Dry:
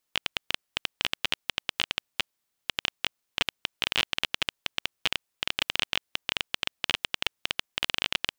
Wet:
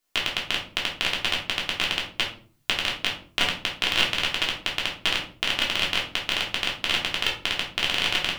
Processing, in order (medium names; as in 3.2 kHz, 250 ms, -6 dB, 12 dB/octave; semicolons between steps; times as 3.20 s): recorder AGC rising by 10 dB/s; simulated room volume 350 m³, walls furnished, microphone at 3.2 m